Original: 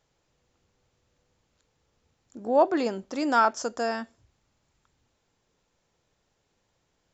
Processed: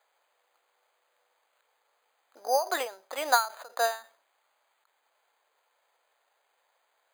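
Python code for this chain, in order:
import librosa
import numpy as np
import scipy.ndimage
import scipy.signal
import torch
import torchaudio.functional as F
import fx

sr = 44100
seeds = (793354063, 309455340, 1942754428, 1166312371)

y = scipy.signal.sosfilt(scipy.signal.butter(4, 630.0, 'highpass', fs=sr, output='sos'), x)
y = np.repeat(scipy.signal.resample_poly(y, 1, 8), 8)[:len(y)]
y = fx.end_taper(y, sr, db_per_s=160.0)
y = y * 10.0 ** (6.5 / 20.0)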